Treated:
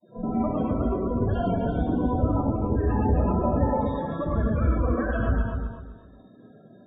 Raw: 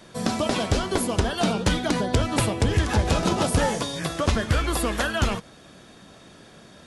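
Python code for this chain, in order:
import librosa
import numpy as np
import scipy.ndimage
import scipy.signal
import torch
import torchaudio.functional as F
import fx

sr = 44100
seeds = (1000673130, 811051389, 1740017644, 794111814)

p1 = fx.tracing_dist(x, sr, depth_ms=0.34)
p2 = scipy.signal.sosfilt(scipy.signal.butter(4, 45.0, 'highpass', fs=sr, output='sos'), p1)
p3 = fx.low_shelf(p2, sr, hz=190.0, db=-6.0)
p4 = fx.schmitt(p3, sr, flips_db=-21.0)
p5 = p3 + F.gain(torch.from_numpy(p4), -9.5).numpy()
p6 = fx.granulator(p5, sr, seeds[0], grain_ms=100.0, per_s=20.0, spray_ms=36.0, spread_st=0)
p7 = np.clip(10.0 ** (20.0 / 20.0) * p6, -1.0, 1.0) / 10.0 ** (20.0 / 20.0)
p8 = fx.spec_topn(p7, sr, count=16)
p9 = fx.spacing_loss(p8, sr, db_at_10k=45)
p10 = fx.echo_feedback(p9, sr, ms=253, feedback_pct=26, wet_db=-6.0)
y = fx.rev_gated(p10, sr, seeds[1], gate_ms=140, shape='rising', drr_db=-2.5)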